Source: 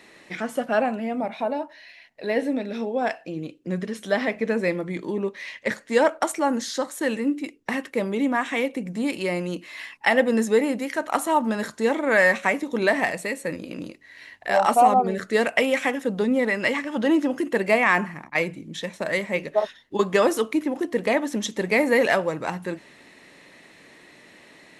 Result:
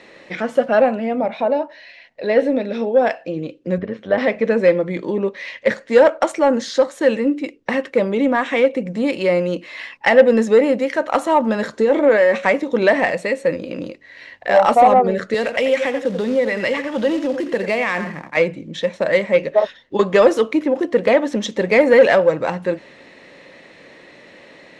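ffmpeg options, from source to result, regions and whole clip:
-filter_complex "[0:a]asettb=1/sr,asplit=3[a][b][c];[a]atrim=end=3.784[d];[b]atrim=start=3.78:end=4.18,asetpts=PTS-STARTPTS,afade=t=in:d=0.004:c=qsin,afade=t=out:st=0.396:d=0.004:c=qsin,lowpass=2.3k,tremolo=f=100:d=0.519[e];[c]atrim=start=4.176[f];[d][e]acrossfade=d=0.004:c1=hsin:c2=qsin[g];[g][f]acrossfade=d=0.004:c1=qsin:c2=hsin,asettb=1/sr,asplit=3[h][i][j];[h]atrim=end=11.724[k];[i]atrim=start=11.72:end=12.35,asetpts=PTS-STARTPTS,afade=t=in:d=0.004:c=qsin,afade=t=out:st=0.626:d=0.004:c=qsin,equalizer=f=390:t=o:w=0.9:g=7.5,acompressor=threshold=-18dB:ratio=10:attack=3.2:release=140:knee=1:detection=peak,asplit=2[l][m];[m]adelay=14,volume=-10.5dB[n];[l][n]amix=inputs=2:normalize=0,atrim=end_sample=27783[o];[j]atrim=start=12.346[p];[k][o]acrossfade=d=0.004:c1=hsin:c2=qsin[q];[q][p]acrossfade=d=0.004:c1=qsin:c2=hsin,asettb=1/sr,asplit=3[r][s][t];[r]atrim=end=15.344[u];[s]atrim=start=15.34:end=18.37,asetpts=PTS-STARTPTS,afade=t=in:d=0.004:c=qsin,afade=t=out:st=3.026:d=0.004:c=qsin,aecho=1:1:86:0.237,atrim=end_sample=133623,acrossover=split=130|3000[v][w][x];[w]acompressor=threshold=-27dB:ratio=2.5:attack=3.2:release=140:knee=2.83:detection=peak[y];[v][y][x]amix=inputs=3:normalize=0,acrusher=bits=4:mode=log:mix=0:aa=0.000001[z];[t]atrim=start=18.366[aa];[u][z]acrossfade=d=0.004:c1=hsin:c2=qsin[ab];[ab][aa]acrossfade=d=0.004:c1=qsin:c2=hsin,lowpass=5.1k,equalizer=f=530:w=4.6:g=9.5,acontrast=55,volume=-1dB"

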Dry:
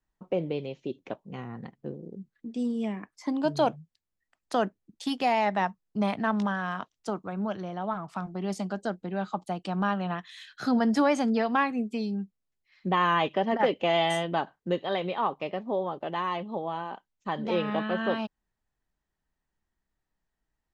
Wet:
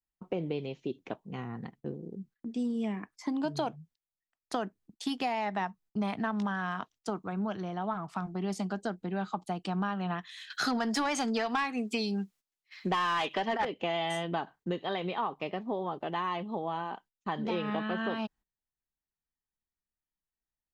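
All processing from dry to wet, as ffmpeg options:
-filter_complex "[0:a]asettb=1/sr,asplit=3[a][b][c];[a]atrim=end=10.504[d];[b]atrim=start=10.5:end=13.65,asetpts=PTS-STARTPTS,afade=t=in:d=0.004:c=qsin,afade=t=out:st=3.146:d=0.004:c=qsin,highshelf=f=4.1k:g=7,asplit=2[e][f];[f]highpass=f=720:p=1,volume=16dB,asoftclip=type=tanh:threshold=-9.5dB[g];[e][g]amix=inputs=2:normalize=0,lowpass=f=7.7k:p=1,volume=-6dB[h];[c]atrim=start=13.646[i];[d][h]acrossfade=d=0.004:c1=hsin:c2=qsin[j];[j][i]acrossfade=d=0.004:c1=qsin:c2=hsin,equalizer=f=560:w=6.4:g=-7,agate=range=-15dB:threshold=-54dB:ratio=16:detection=peak,acompressor=threshold=-28dB:ratio=6"

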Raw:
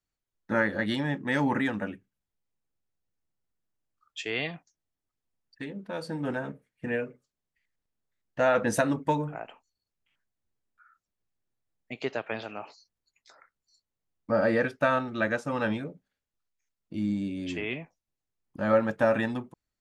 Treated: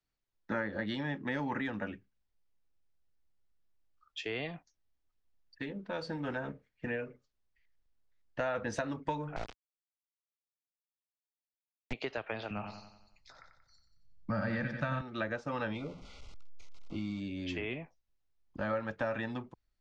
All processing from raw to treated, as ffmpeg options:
-filter_complex "[0:a]asettb=1/sr,asplit=3[a][b][c];[a]atrim=end=9.364[d];[b]atrim=start=9.36:end=11.93,asetpts=PTS-STARTPTS,afade=t=in:d=0.004:c=qsin,afade=t=out:st=2.566:d=0.004:c=qsin,lowshelf=f=490:g=11.5,bandreject=f=50:t=h:w=6,bandreject=f=100:t=h:w=6,acrusher=bits=4:dc=4:mix=0:aa=0.000001[e];[c]atrim=start=11.926[f];[d][e]acrossfade=d=0.004:c1=hsin:c2=qsin[g];[g][f]acrossfade=d=0.004:c1=qsin:c2=hsin,asettb=1/sr,asplit=3[h][i][j];[h]atrim=end=12.504[k];[i]atrim=start=12.5:end=15.01,asetpts=PTS-STARTPTS,afade=t=in:d=0.004:c=qsin,afade=t=out:st=2.506:d=0.004:c=qsin,lowshelf=f=250:t=q:w=1.5:g=13,aecho=1:1:91|182|273|364|455|546:0.376|0.188|0.094|0.047|0.0235|0.0117,atrim=end_sample=110691[l];[j]atrim=start=15.006[m];[k][l]acrossfade=d=0.004:c1=hsin:c2=qsin[n];[n][m]acrossfade=d=0.004:c1=qsin:c2=hsin,asettb=1/sr,asplit=3[o][p][q];[o]atrim=end=15.754[r];[p]atrim=start=15.75:end=17.2,asetpts=PTS-STARTPTS,afade=t=in:d=0.004:c=qsin,afade=t=out:st=1.446:d=0.004:c=qsin,aeval=exprs='val(0)+0.5*0.00531*sgn(val(0))':c=same,asuperstop=centerf=1700:order=20:qfactor=3.3[s];[q]atrim=start=17.196[t];[r][s]acrossfade=d=0.004:c1=hsin:c2=qsin[u];[u][t]acrossfade=d=0.004:c1=qsin:c2=hsin,lowpass=f=5.8k:w=0.5412,lowpass=f=5.8k:w=1.3066,acrossover=split=110|1000[v][w][x];[v]acompressor=threshold=-51dB:ratio=4[y];[w]acompressor=threshold=-35dB:ratio=4[z];[x]acompressor=threshold=-39dB:ratio=4[aa];[y][z][aa]amix=inputs=3:normalize=0,asubboost=boost=3.5:cutoff=75"

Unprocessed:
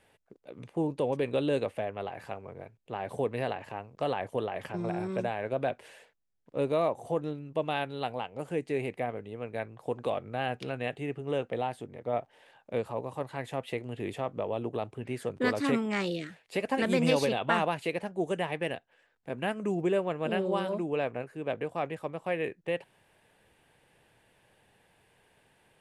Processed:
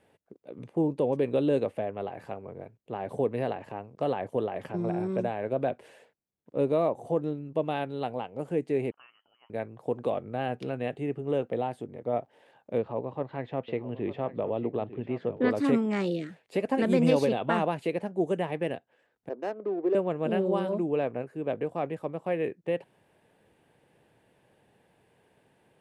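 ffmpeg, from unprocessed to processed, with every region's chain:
-filter_complex "[0:a]asettb=1/sr,asplit=3[a][b][c];[a]atrim=end=8.914[d];[b]atrim=start=8.91:end=9.5,asetpts=PTS-STARTPTS,afade=t=in:d=0.004:c=qsin,afade=t=out:st=0.586:d=0.004:c=qsin,highpass=300,aderivative,lowpass=f=2.9k:t=q:w=0.5098,lowpass=f=2.9k:t=q:w=0.6013,lowpass=f=2.9k:t=q:w=0.9,lowpass=f=2.9k:t=q:w=2.563,afreqshift=-3400[e];[c]atrim=start=9.496[f];[d][e]acrossfade=d=0.004:c1=hsin:c2=qsin[g];[g][f]acrossfade=d=0.004:c1=qsin:c2=hsin,asettb=1/sr,asplit=3[h][i][j];[h]atrim=end=12.784[k];[i]atrim=start=12.78:end=15.51,asetpts=PTS-STARTPTS,afade=t=in:d=0.004:c=qsin,afade=t=out:st=2.726:d=0.004:c=qsin,lowpass=f=3.9k:w=0.5412,lowpass=f=3.9k:w=1.3066,aecho=1:1:901:0.2,atrim=end_sample=120393[l];[j]atrim=start=15.506[m];[k][l]acrossfade=d=0.004:c1=hsin:c2=qsin[n];[n][m]acrossfade=d=0.004:c1=qsin:c2=hsin,asettb=1/sr,asplit=3[o][p][q];[o]atrim=end=19.294[r];[p]atrim=start=19.29:end=19.95,asetpts=PTS-STARTPTS,afade=t=in:d=0.004:c=qsin,afade=t=out:st=0.656:d=0.004:c=qsin,highpass=f=330:w=0.5412,highpass=f=330:w=1.3066,equalizer=f=6.7k:w=0.39:g=-14.5,adynamicsmooth=sensitivity=6.5:basefreq=670[s];[q]atrim=start=19.946[t];[r][s]acrossfade=d=0.004:c1=hsin:c2=qsin[u];[u][t]acrossfade=d=0.004:c1=qsin:c2=hsin,highpass=f=260:p=1,tiltshelf=f=650:g=7.5,volume=2dB"

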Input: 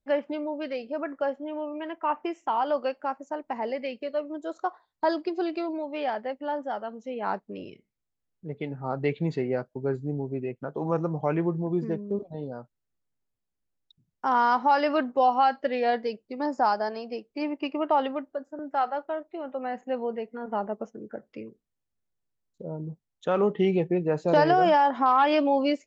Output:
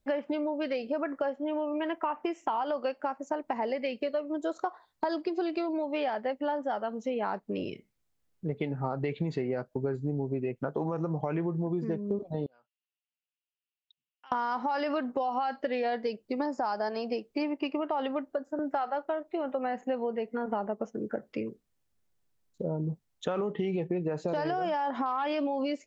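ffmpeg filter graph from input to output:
-filter_complex "[0:a]asettb=1/sr,asplit=3[a][b][c];[a]atrim=end=12.464[d];[b]atrim=start=12.46:end=14.32,asetpts=PTS-STARTPTS,afade=t=in:d=0.004:c=qsin,afade=t=out:st=1.856:d=0.004:c=qsin,acompressor=threshold=-38dB:ratio=2.5:attack=3.2:release=140:knee=1:detection=peak,bandpass=f=2.8k:t=q:w=6.1[e];[c]atrim=start=14.316[f];[d][e]acrossfade=d=0.004:c1=hsin:c2=qsin[g];[g][f]acrossfade=d=0.004:c1=qsin:c2=hsin,alimiter=limit=-19.5dB:level=0:latency=1,acompressor=threshold=-35dB:ratio=6,volume=7dB"

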